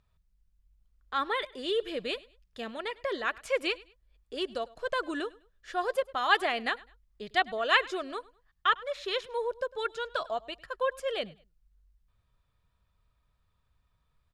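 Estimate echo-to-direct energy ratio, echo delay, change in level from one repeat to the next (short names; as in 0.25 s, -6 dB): -21.5 dB, 0.102 s, -11.0 dB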